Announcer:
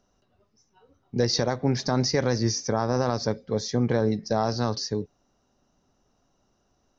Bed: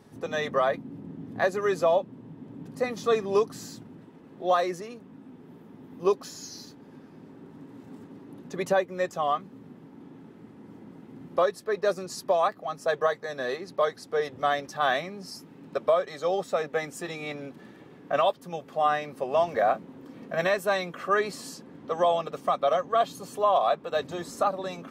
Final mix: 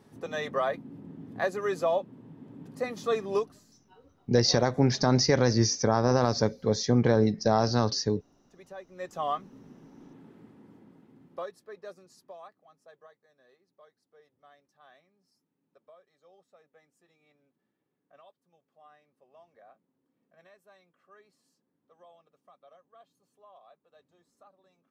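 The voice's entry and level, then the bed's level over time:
3.15 s, +1.0 dB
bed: 3.37 s -4 dB
3.65 s -22 dB
8.72 s -22 dB
9.2 s -4 dB
10.38 s -4 dB
13.36 s -33 dB

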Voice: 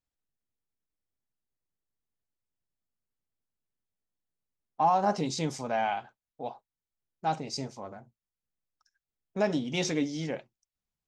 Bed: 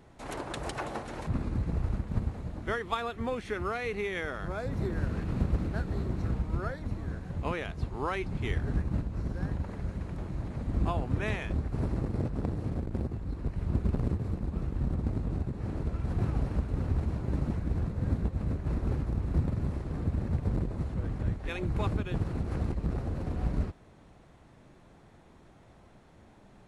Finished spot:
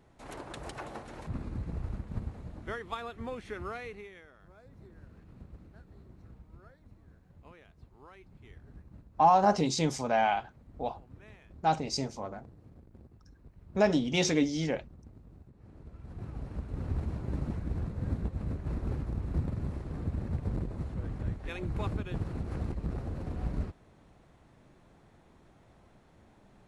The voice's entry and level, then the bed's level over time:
4.40 s, +2.5 dB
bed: 3.78 s -6 dB
4.28 s -21.5 dB
15.5 s -21.5 dB
16.94 s -3.5 dB

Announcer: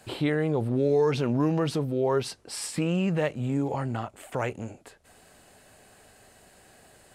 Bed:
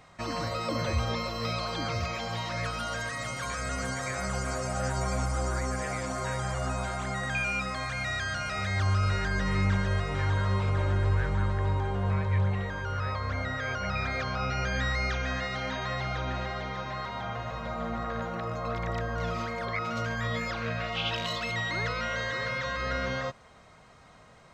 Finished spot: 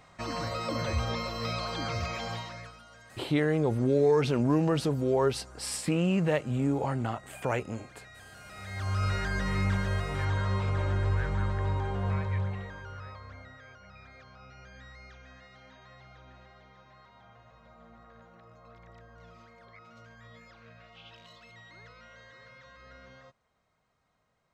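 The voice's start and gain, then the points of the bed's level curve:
3.10 s, -0.5 dB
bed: 2.31 s -1.5 dB
2.84 s -20 dB
8.31 s -20 dB
9.03 s -2 dB
12.16 s -2 dB
13.83 s -21 dB

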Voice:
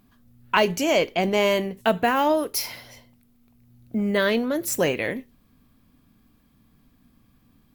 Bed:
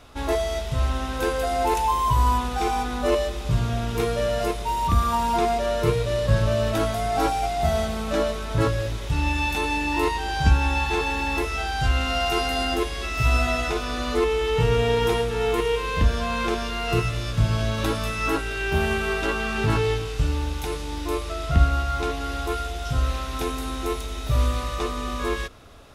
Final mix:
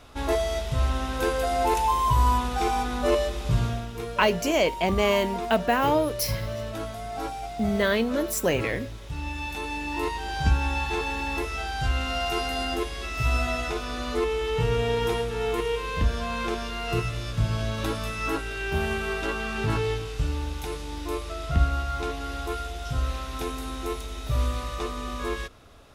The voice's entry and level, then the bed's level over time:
3.65 s, -2.0 dB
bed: 3.65 s -1 dB
3.92 s -10 dB
9.11 s -10 dB
10.39 s -4 dB

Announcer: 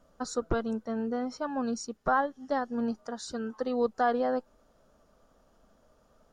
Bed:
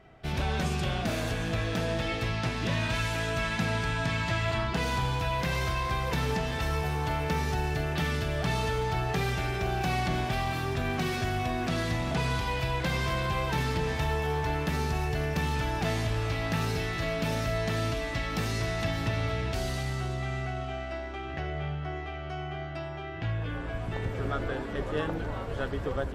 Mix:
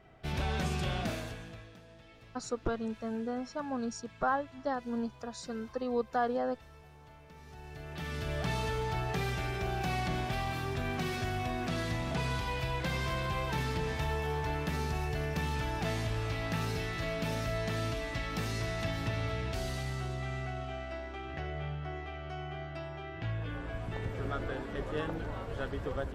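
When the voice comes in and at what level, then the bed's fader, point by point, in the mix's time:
2.15 s, -4.0 dB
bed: 1.04 s -3.5 dB
1.82 s -25.5 dB
7.32 s -25.5 dB
8.31 s -4.5 dB

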